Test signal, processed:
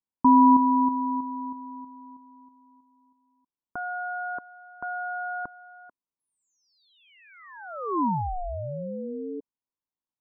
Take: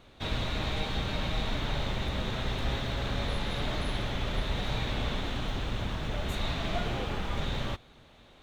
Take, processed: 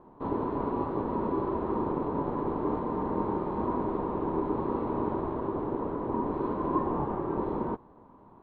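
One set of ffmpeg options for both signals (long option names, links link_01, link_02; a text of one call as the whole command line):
ffmpeg -i in.wav -af "lowpass=frequency=640:width_type=q:width=3.5,aeval=exprs='val(0)*sin(2*PI*360*n/s)':channel_layout=same,volume=2dB" out.wav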